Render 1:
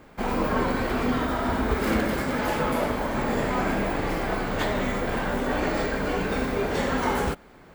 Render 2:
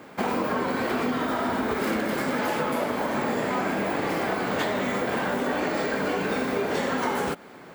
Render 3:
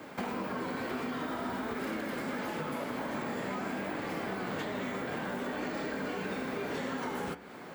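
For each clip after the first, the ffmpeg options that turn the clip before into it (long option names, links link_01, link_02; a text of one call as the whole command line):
ffmpeg -i in.wav -af "highpass=170,acompressor=threshold=-29dB:ratio=6,volume=6dB" out.wav
ffmpeg -i in.wav -filter_complex "[0:a]flanger=delay=3.1:depth=4.7:regen=83:speed=0.51:shape=triangular,acrossover=split=360|1000|3600[link_01][link_02][link_03][link_04];[link_01]acompressor=threshold=-42dB:ratio=4[link_05];[link_02]acompressor=threshold=-47dB:ratio=4[link_06];[link_03]acompressor=threshold=-46dB:ratio=4[link_07];[link_04]acompressor=threshold=-57dB:ratio=4[link_08];[link_05][link_06][link_07][link_08]amix=inputs=4:normalize=0,bandreject=frequency=71.33:width_type=h:width=4,bandreject=frequency=142.66:width_type=h:width=4,bandreject=frequency=213.99:width_type=h:width=4,bandreject=frequency=285.32:width_type=h:width=4,bandreject=frequency=356.65:width_type=h:width=4,bandreject=frequency=427.98:width_type=h:width=4,bandreject=frequency=499.31:width_type=h:width=4,bandreject=frequency=570.64:width_type=h:width=4,bandreject=frequency=641.97:width_type=h:width=4,bandreject=frequency=713.3:width_type=h:width=4,bandreject=frequency=784.63:width_type=h:width=4,bandreject=frequency=855.96:width_type=h:width=4,bandreject=frequency=927.29:width_type=h:width=4,bandreject=frequency=998.62:width_type=h:width=4,bandreject=frequency=1069.95:width_type=h:width=4,bandreject=frequency=1141.28:width_type=h:width=4,bandreject=frequency=1212.61:width_type=h:width=4,bandreject=frequency=1283.94:width_type=h:width=4,bandreject=frequency=1355.27:width_type=h:width=4,bandreject=frequency=1426.6:width_type=h:width=4,bandreject=frequency=1497.93:width_type=h:width=4,bandreject=frequency=1569.26:width_type=h:width=4,bandreject=frequency=1640.59:width_type=h:width=4,bandreject=frequency=1711.92:width_type=h:width=4,bandreject=frequency=1783.25:width_type=h:width=4,bandreject=frequency=1854.58:width_type=h:width=4,bandreject=frequency=1925.91:width_type=h:width=4,bandreject=frequency=1997.24:width_type=h:width=4,bandreject=frequency=2068.57:width_type=h:width=4,bandreject=frequency=2139.9:width_type=h:width=4,bandreject=frequency=2211.23:width_type=h:width=4,bandreject=frequency=2282.56:width_type=h:width=4,bandreject=frequency=2353.89:width_type=h:width=4,bandreject=frequency=2425.22:width_type=h:width=4,bandreject=frequency=2496.55:width_type=h:width=4,bandreject=frequency=2567.88:width_type=h:width=4,bandreject=frequency=2639.21:width_type=h:width=4,volume=4dB" out.wav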